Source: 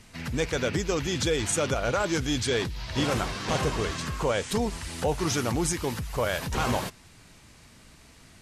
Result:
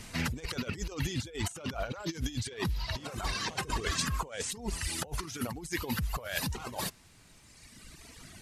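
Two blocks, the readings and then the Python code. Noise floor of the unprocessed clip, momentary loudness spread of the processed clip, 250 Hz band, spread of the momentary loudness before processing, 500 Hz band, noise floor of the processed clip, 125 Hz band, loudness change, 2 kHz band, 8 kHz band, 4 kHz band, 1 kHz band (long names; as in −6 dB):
−54 dBFS, 10 LU, −8.0 dB, 5 LU, −13.5 dB, −58 dBFS, −5.5 dB, −7.0 dB, −5.5 dB, −5.5 dB, −5.0 dB, −7.5 dB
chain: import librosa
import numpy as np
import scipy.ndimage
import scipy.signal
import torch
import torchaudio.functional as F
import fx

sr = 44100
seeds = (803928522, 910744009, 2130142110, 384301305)

y = fx.dereverb_blind(x, sr, rt60_s=2.0)
y = fx.high_shelf(y, sr, hz=6000.0, db=4.0)
y = fx.over_compress(y, sr, threshold_db=-34.0, ratio=-0.5)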